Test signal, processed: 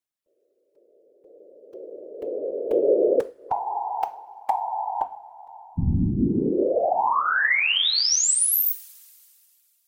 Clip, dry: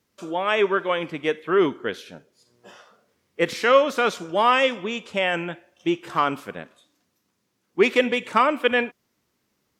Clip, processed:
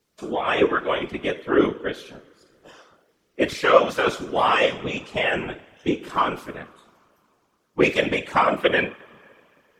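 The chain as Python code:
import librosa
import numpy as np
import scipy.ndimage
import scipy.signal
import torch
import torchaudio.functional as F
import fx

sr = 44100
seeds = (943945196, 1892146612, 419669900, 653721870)

y = fx.spec_quant(x, sr, step_db=15)
y = fx.rev_double_slope(y, sr, seeds[0], early_s=0.36, late_s=2.7, knee_db=-20, drr_db=9.5)
y = fx.whisperise(y, sr, seeds[1])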